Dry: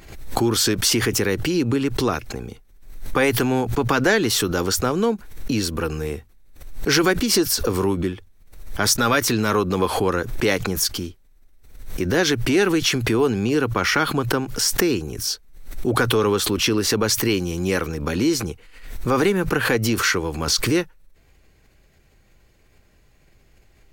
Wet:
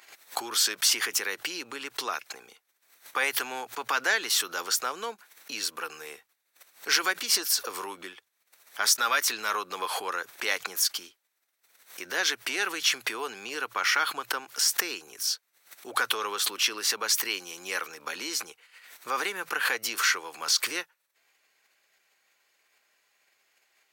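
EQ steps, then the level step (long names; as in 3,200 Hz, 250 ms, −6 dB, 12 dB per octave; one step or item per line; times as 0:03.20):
high-pass filter 990 Hz 12 dB per octave
−3.5 dB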